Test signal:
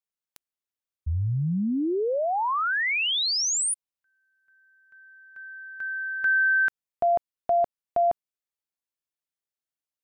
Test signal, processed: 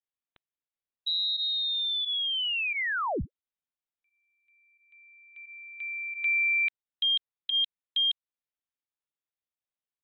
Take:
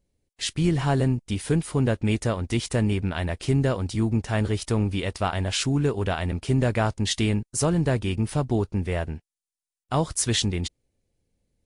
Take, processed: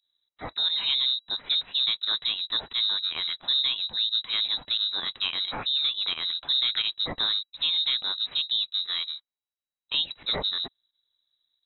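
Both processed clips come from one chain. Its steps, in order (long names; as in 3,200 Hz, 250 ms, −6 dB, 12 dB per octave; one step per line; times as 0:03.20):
voice inversion scrambler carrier 3,900 Hz
fake sidechain pumping 88 BPM, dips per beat 1, −14 dB, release 62 ms
level −4 dB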